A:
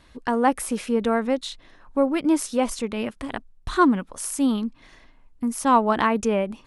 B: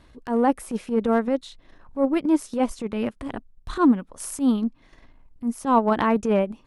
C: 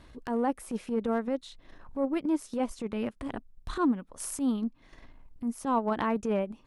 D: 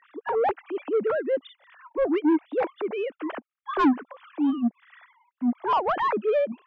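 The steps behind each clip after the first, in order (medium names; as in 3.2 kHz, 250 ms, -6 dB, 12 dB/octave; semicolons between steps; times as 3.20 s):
tilt shelf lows +3.5 dB; transient shaper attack -11 dB, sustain -7 dB; trim +1 dB
compression 1.5:1, threshold -39 dBFS, peak gain reduction 9.5 dB
formants replaced by sine waves; overdrive pedal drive 24 dB, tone 1.9 kHz, clips at -10 dBFS; trim -2 dB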